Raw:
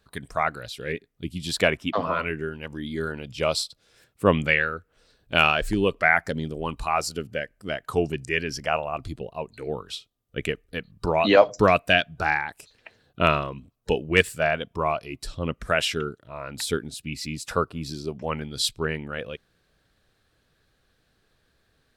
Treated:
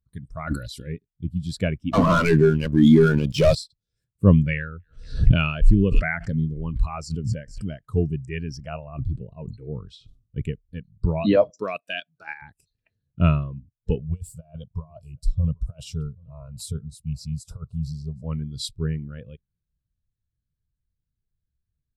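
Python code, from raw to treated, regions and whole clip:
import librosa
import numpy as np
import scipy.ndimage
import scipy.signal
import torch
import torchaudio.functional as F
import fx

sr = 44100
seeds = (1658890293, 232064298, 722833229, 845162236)

y = fx.chain(x, sr, fx.high_shelf(hz=3200.0, db=9.5),
    fx.comb(ms=3.5, depth=0.49),
    fx.sustainer(db_per_s=59.0), at=(0.47, 0.87))
y = fx.chain(y, sr, fx.highpass(hz=120.0, slope=12),
    fx.low_shelf(hz=260.0, db=-6.0),
    fx.leveller(passes=5), at=(1.91, 3.55))
y = fx.chain(y, sr, fx.lowpass(hz=8800.0, slope=12),
    fx.echo_wet_highpass(ms=233, feedback_pct=36, hz=4300.0, wet_db=-18.0),
    fx.pre_swell(db_per_s=62.0), at=(4.56, 7.85))
y = fx.chain(y, sr, fx.bessel_lowpass(hz=8100.0, order=2),
    fx.sustainer(db_per_s=100.0), at=(8.84, 10.42))
y = fx.chain(y, sr, fx.highpass(hz=360.0, slope=12),
    fx.high_shelf(hz=2100.0, db=6.0),
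    fx.level_steps(step_db=10), at=(11.5, 12.42))
y = fx.chain(y, sr, fx.fixed_phaser(hz=760.0, stages=4),
    fx.over_compress(threshold_db=-30.0, ratio=-0.5),
    fx.echo_single(ms=779, db=-19.5), at=(13.99, 18.24))
y = fx.bass_treble(y, sr, bass_db=15, treble_db=8)
y = fx.notch(y, sr, hz=760.0, q=12.0)
y = fx.spectral_expand(y, sr, expansion=1.5)
y = F.gain(torch.from_numpy(y), -3.5).numpy()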